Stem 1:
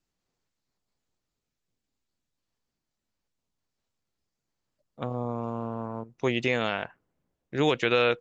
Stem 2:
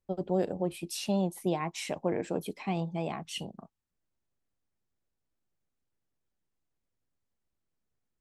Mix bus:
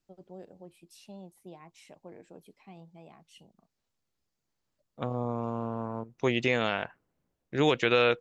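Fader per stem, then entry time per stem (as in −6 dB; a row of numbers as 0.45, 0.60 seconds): −0.5, −18.0 decibels; 0.00, 0.00 seconds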